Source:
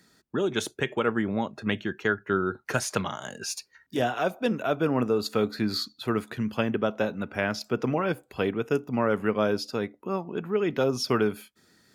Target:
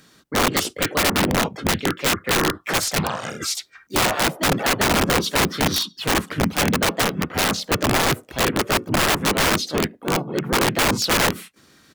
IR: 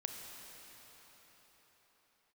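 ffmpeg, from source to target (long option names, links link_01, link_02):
-filter_complex "[0:a]asplit=4[link_01][link_02][link_03][link_04];[link_02]asetrate=33038,aresample=44100,atempo=1.33484,volume=-6dB[link_05];[link_03]asetrate=37084,aresample=44100,atempo=1.18921,volume=0dB[link_06];[link_04]asetrate=55563,aresample=44100,atempo=0.793701,volume=-3dB[link_07];[link_01][link_05][link_06][link_07]amix=inputs=4:normalize=0,aeval=exprs='(mod(6.68*val(0)+1,2)-1)/6.68':channel_layout=same,volume=4dB"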